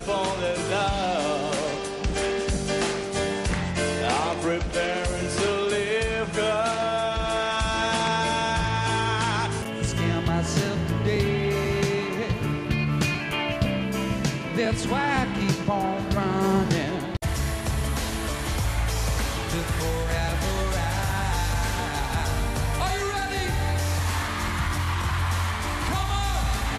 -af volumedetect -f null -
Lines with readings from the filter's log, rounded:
mean_volume: -25.1 dB
max_volume: -11.3 dB